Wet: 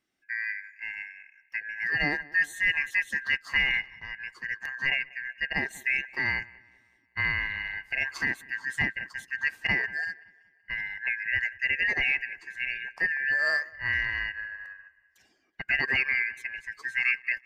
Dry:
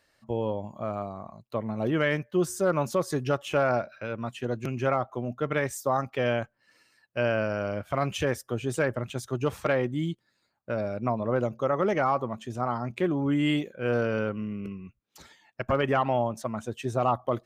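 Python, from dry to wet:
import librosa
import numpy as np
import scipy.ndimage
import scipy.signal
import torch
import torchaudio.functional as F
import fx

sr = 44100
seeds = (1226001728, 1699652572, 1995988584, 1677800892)

y = fx.band_shuffle(x, sr, order='2143')
y = fx.echo_wet_lowpass(y, sr, ms=189, feedback_pct=51, hz=3100.0, wet_db=-15)
y = fx.upward_expand(y, sr, threshold_db=-46.0, expansion=1.5)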